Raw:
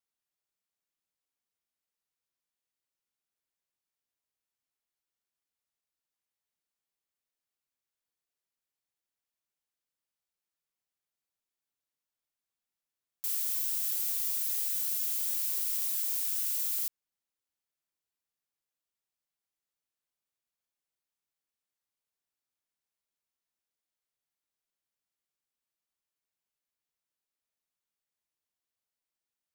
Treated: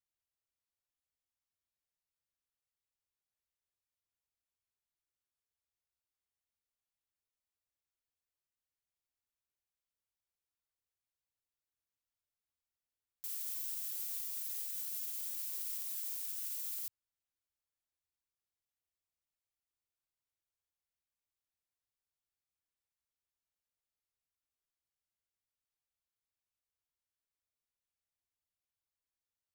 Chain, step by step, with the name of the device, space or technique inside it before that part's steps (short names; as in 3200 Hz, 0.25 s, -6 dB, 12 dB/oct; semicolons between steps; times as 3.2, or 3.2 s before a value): car stereo with a boomy subwoofer (resonant low shelf 130 Hz +9 dB, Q 1.5; limiter -24 dBFS, peak gain reduction 5 dB); gain -6.5 dB